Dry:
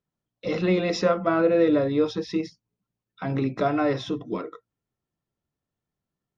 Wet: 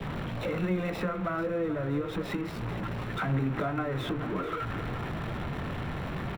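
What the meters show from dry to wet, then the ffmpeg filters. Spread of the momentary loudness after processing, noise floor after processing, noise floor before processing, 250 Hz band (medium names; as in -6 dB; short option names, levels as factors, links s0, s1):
5 LU, -36 dBFS, under -85 dBFS, -6.5 dB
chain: -filter_complex "[0:a]aeval=exprs='val(0)+0.5*0.0531*sgn(val(0))':c=same,lowpass=f=4600:w=0.5412,lowpass=f=4600:w=1.3066,adynamicequalizer=threshold=0.01:dfrequency=1400:dqfactor=2.5:tfrequency=1400:tqfactor=2.5:attack=5:release=100:ratio=0.375:range=2.5:mode=boostabove:tftype=bell,acrossover=split=150[s0][s1];[s1]acompressor=threshold=0.0398:ratio=6[s2];[s0][s2]amix=inputs=2:normalize=0,acrossover=split=210|720|3200[s3][s4][s5][s6];[s4]flanger=delay=17.5:depth=5.5:speed=1.9[s7];[s6]acrusher=samples=27:mix=1:aa=0.000001[s8];[s3][s7][s5][s8]amix=inputs=4:normalize=0,aecho=1:1:436:0.211"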